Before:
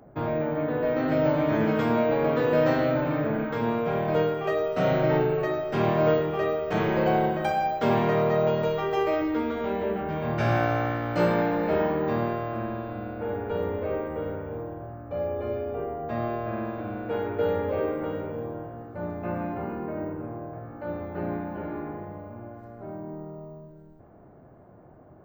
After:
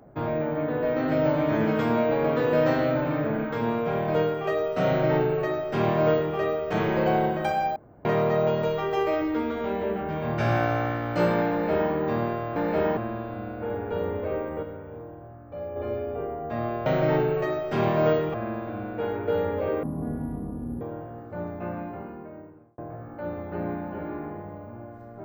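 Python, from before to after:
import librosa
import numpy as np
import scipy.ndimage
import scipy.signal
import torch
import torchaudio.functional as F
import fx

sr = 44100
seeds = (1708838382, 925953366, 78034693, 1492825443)

y = fx.edit(x, sr, fx.duplicate(start_s=4.87, length_s=1.48, to_s=16.45),
    fx.room_tone_fill(start_s=7.76, length_s=0.29),
    fx.duplicate(start_s=11.51, length_s=0.41, to_s=12.56),
    fx.clip_gain(start_s=14.22, length_s=1.13, db=-5.5),
    fx.speed_span(start_s=17.94, length_s=0.5, speed=0.51),
    fx.fade_out_span(start_s=19.0, length_s=1.41), tone=tone)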